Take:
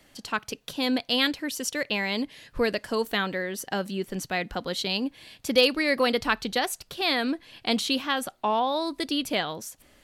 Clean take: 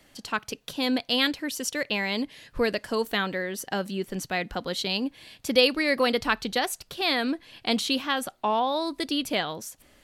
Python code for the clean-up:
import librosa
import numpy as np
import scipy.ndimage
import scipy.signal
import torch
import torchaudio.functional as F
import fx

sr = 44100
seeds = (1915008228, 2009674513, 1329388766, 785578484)

y = fx.fix_declip(x, sr, threshold_db=-9.5)